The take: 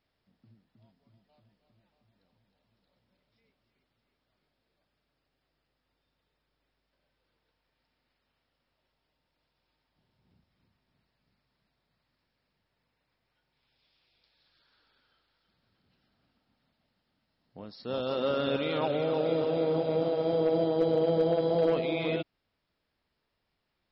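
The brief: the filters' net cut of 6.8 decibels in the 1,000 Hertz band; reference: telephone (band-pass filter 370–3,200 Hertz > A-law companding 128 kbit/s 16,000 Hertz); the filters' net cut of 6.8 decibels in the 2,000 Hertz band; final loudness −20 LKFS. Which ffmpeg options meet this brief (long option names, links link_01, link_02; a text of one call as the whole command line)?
ffmpeg -i in.wav -af "highpass=370,lowpass=3200,equalizer=frequency=1000:width_type=o:gain=-9,equalizer=frequency=2000:width_type=o:gain=-5.5,volume=12.5dB" -ar 16000 -c:a pcm_alaw out.wav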